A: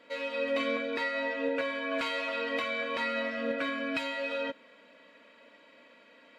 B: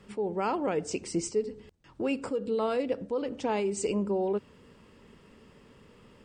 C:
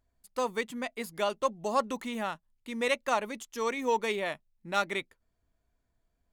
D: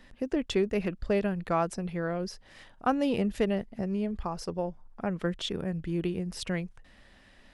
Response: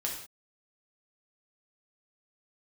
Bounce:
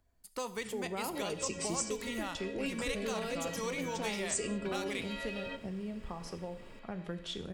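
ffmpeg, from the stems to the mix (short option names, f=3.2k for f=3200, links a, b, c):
-filter_complex "[0:a]acompressor=threshold=-31dB:ratio=6,adelay=1050,volume=-3.5dB,asplit=2[a][b];[b]volume=-11.5dB[c];[1:a]highshelf=f=9.5k:g=7.5,adelay=550,volume=-2dB,asplit=2[d][e];[e]volume=-11dB[f];[2:a]bandreject=f=3.6k:w=29,alimiter=limit=-23.5dB:level=0:latency=1:release=14,volume=0.5dB,asplit=3[g][h][i];[h]volume=-12dB[j];[3:a]adelay=1850,volume=-10dB,asplit=2[k][l];[l]volume=-5.5dB[m];[i]apad=whole_len=327863[n];[a][n]sidechaincompress=threshold=-48dB:ratio=8:attack=49:release=109[o];[4:a]atrim=start_sample=2205[p];[c][f][j][m]amix=inputs=4:normalize=0[q];[q][p]afir=irnorm=-1:irlink=0[r];[o][d][g][k][r]amix=inputs=5:normalize=0,acrossover=split=130|3000[s][t][u];[t]acompressor=threshold=-40dB:ratio=2.5[v];[s][v][u]amix=inputs=3:normalize=0"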